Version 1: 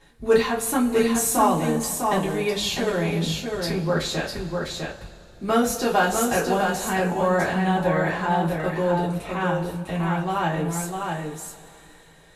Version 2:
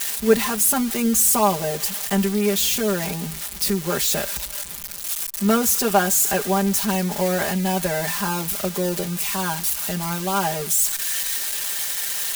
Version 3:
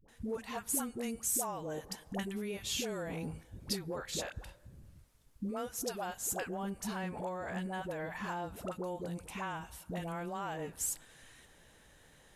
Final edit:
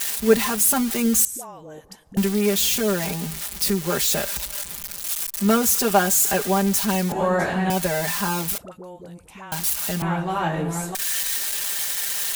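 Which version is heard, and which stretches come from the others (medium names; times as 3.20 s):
2
1.25–2.17 s: from 3
7.12–7.70 s: from 1
8.58–9.52 s: from 3
10.02–10.95 s: from 1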